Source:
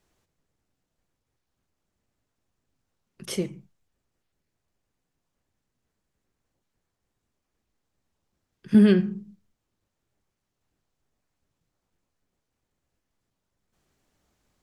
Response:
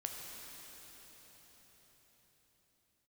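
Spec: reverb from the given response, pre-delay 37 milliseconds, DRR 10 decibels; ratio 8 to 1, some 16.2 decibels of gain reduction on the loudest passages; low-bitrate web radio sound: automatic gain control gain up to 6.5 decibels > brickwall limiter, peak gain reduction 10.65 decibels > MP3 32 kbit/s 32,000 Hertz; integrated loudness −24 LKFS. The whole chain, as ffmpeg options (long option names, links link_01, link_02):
-filter_complex "[0:a]acompressor=threshold=-29dB:ratio=8,asplit=2[link_01][link_02];[1:a]atrim=start_sample=2205,adelay=37[link_03];[link_02][link_03]afir=irnorm=-1:irlink=0,volume=-10dB[link_04];[link_01][link_04]amix=inputs=2:normalize=0,dynaudnorm=maxgain=6.5dB,alimiter=level_in=5.5dB:limit=-24dB:level=0:latency=1,volume=-5.5dB,volume=20.5dB" -ar 32000 -c:a libmp3lame -b:a 32k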